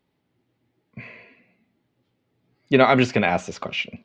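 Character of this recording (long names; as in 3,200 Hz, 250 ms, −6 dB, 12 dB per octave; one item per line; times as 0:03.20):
background noise floor −74 dBFS
spectral slope −4.0 dB per octave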